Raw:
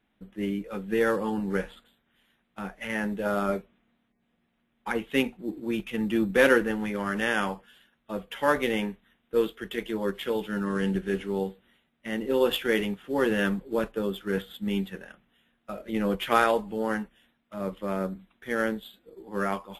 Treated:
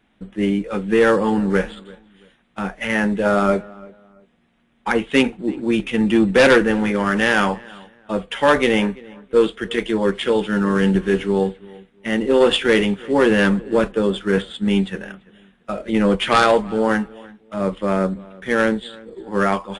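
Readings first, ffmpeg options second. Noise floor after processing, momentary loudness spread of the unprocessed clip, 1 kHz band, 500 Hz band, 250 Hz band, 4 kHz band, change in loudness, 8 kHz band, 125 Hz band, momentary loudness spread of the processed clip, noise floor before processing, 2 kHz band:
−61 dBFS, 13 LU, +9.0 dB, +9.5 dB, +10.0 dB, +10.5 dB, +9.5 dB, +9.0 dB, +10.5 dB, 14 LU, −74 dBFS, +9.0 dB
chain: -filter_complex "[0:a]aeval=exprs='0.447*sin(PI/2*2.24*val(0)/0.447)':channel_layout=same,asplit=2[link_01][link_02];[link_02]adelay=338,lowpass=frequency=2100:poles=1,volume=-22dB,asplit=2[link_03][link_04];[link_04]adelay=338,lowpass=frequency=2100:poles=1,volume=0.28[link_05];[link_03][link_05]amix=inputs=2:normalize=0[link_06];[link_01][link_06]amix=inputs=2:normalize=0,aresample=22050,aresample=44100"

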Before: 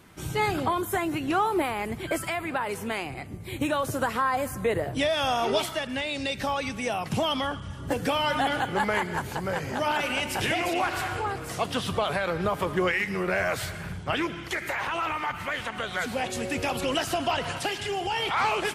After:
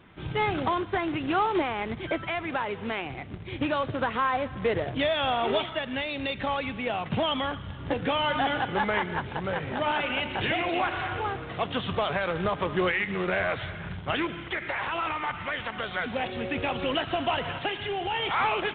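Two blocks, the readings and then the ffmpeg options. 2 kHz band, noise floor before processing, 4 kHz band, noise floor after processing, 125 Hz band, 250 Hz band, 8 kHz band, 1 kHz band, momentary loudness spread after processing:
−0.5 dB, −38 dBFS, −1.0 dB, −39 dBFS, −0.5 dB, −0.5 dB, below −40 dB, −0.5 dB, 6 LU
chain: -af "acrusher=bits=2:mode=log:mix=0:aa=0.000001,volume=-1dB" -ar 8000 -c:a pcm_mulaw

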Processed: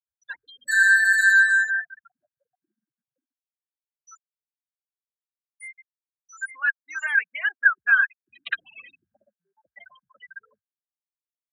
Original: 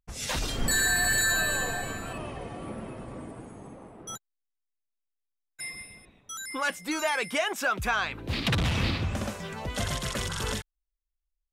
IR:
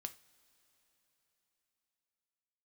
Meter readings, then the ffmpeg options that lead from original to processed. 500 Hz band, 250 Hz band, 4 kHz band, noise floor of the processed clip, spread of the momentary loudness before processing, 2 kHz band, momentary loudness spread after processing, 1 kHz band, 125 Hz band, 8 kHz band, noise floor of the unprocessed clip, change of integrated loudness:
below −20 dB, below −40 dB, −9.0 dB, below −85 dBFS, 19 LU, +11.0 dB, 17 LU, −5.0 dB, below −40 dB, −8.5 dB, −83 dBFS, +9.0 dB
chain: -af "afftfilt=real='re*gte(hypot(re,im),0.0891)':imag='im*gte(hypot(re,im),0.0891)':win_size=1024:overlap=0.75,highpass=frequency=1600:width_type=q:width=15,volume=-7dB"

